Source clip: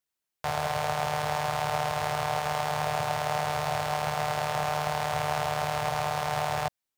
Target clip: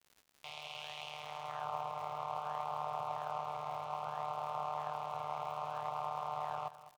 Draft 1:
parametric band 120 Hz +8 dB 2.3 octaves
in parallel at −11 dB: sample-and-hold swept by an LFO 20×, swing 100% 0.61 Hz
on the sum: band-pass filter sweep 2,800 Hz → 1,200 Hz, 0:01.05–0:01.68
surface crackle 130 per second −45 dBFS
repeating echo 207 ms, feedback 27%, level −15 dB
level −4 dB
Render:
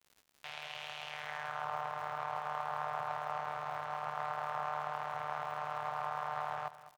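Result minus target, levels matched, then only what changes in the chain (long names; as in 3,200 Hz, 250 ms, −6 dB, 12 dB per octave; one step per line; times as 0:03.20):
2,000 Hz band +7.5 dB
add first: Butterworth band-reject 1,700 Hz, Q 1.4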